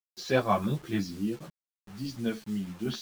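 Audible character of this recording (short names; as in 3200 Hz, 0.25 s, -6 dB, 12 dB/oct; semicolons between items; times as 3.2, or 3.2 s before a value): random-step tremolo; a quantiser's noise floor 8-bit, dither none; a shimmering, thickened sound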